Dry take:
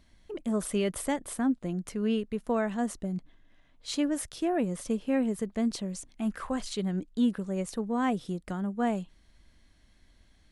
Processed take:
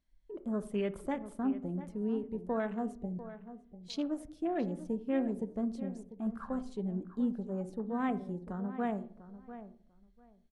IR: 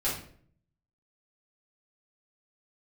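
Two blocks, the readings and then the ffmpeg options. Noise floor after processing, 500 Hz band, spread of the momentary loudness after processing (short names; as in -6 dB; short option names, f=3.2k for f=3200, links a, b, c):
-64 dBFS, -4.5 dB, 15 LU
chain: -filter_complex "[0:a]afwtdn=0.01,asplit=2[a][b];[b]adelay=695,lowpass=f=2.1k:p=1,volume=-13dB,asplit=2[c][d];[d]adelay=695,lowpass=f=2.1k:p=1,volume=0.18[e];[a][c][e]amix=inputs=3:normalize=0,asplit=2[f][g];[1:a]atrim=start_sample=2205,lowpass=2.1k,adelay=15[h];[g][h]afir=irnorm=-1:irlink=0,volume=-19dB[i];[f][i]amix=inputs=2:normalize=0,volume=-5.5dB"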